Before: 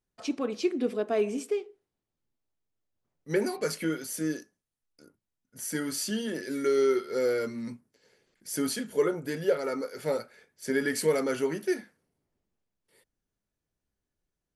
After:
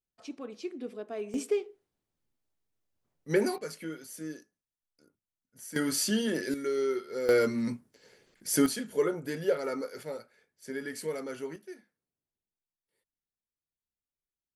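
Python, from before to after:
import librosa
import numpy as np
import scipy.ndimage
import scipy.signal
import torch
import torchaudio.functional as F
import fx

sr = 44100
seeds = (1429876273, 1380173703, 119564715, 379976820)

y = fx.gain(x, sr, db=fx.steps((0.0, -10.5), (1.34, 1.0), (3.58, -9.0), (5.76, 3.0), (6.54, -5.5), (7.29, 5.5), (8.66, -2.0), (10.03, -9.5), (11.56, -17.0)))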